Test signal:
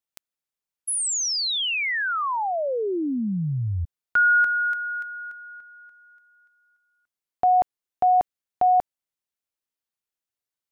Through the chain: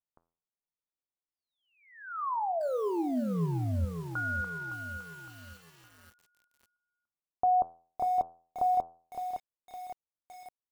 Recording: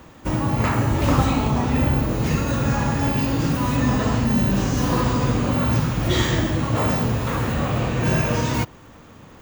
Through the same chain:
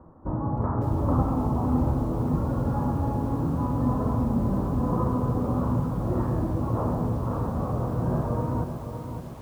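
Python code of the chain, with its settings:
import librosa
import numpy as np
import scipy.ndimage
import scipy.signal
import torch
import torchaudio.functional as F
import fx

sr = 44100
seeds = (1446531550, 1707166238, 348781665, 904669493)

y = scipy.signal.sosfilt(scipy.signal.butter(6, 1200.0, 'lowpass', fs=sr, output='sos'), x)
y = fx.low_shelf(y, sr, hz=61.0, db=3.0)
y = fx.comb_fb(y, sr, f0_hz=84.0, decay_s=0.45, harmonics='all', damping=0.5, mix_pct=60)
y = fx.echo_crushed(y, sr, ms=562, feedback_pct=55, bits=8, wet_db=-8.0)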